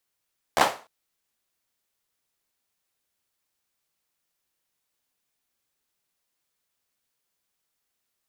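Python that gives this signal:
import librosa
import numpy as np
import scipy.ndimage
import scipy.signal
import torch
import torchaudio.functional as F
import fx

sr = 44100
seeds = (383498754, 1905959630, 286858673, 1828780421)

y = fx.drum_clap(sr, seeds[0], length_s=0.3, bursts=4, spacing_ms=13, hz=750.0, decay_s=0.34)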